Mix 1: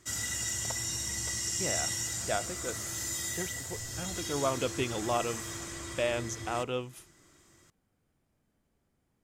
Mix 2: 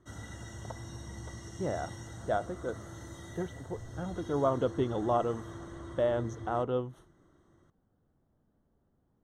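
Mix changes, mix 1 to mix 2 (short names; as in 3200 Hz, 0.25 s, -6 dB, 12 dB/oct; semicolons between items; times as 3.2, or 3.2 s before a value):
speech +3.5 dB; master: add running mean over 18 samples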